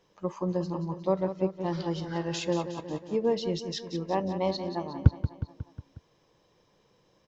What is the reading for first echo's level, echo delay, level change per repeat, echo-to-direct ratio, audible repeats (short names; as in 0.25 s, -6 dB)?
-10.5 dB, 0.181 s, -4.5 dB, -8.5 dB, 5